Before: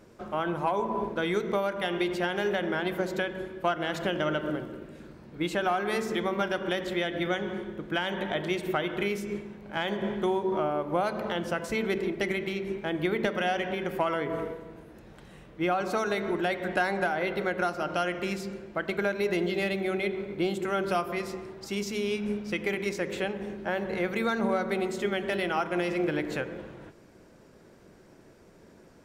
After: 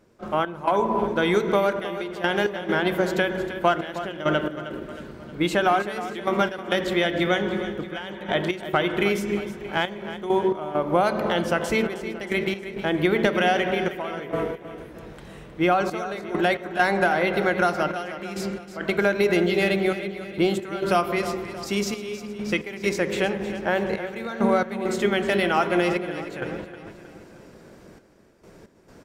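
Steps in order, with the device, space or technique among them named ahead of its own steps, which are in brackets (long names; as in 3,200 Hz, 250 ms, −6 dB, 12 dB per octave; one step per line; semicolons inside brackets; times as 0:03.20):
trance gate with a delay (gate pattern ".x.xxxxx." 67 BPM −12 dB; repeating echo 314 ms, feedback 50%, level −12.5 dB)
level +7 dB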